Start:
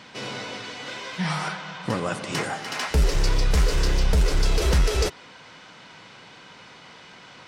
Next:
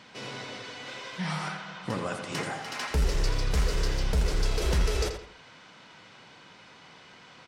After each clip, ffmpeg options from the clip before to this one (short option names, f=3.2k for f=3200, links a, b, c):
-filter_complex "[0:a]asplit=2[a][b];[b]adelay=83,lowpass=f=4.8k:p=1,volume=-7dB,asplit=2[c][d];[d]adelay=83,lowpass=f=4.8k:p=1,volume=0.35,asplit=2[e][f];[f]adelay=83,lowpass=f=4.8k:p=1,volume=0.35,asplit=2[g][h];[h]adelay=83,lowpass=f=4.8k:p=1,volume=0.35[i];[a][c][e][g][i]amix=inputs=5:normalize=0,volume=-6dB"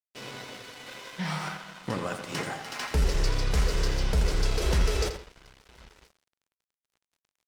-af "agate=range=-33dB:threshold=-48dB:ratio=3:detection=peak,aecho=1:1:1026:0.0794,aeval=exprs='sgn(val(0))*max(abs(val(0))-0.00531,0)':c=same,volume=1.5dB"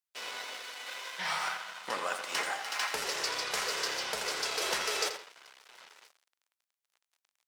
-af "highpass=730,volume=2.5dB"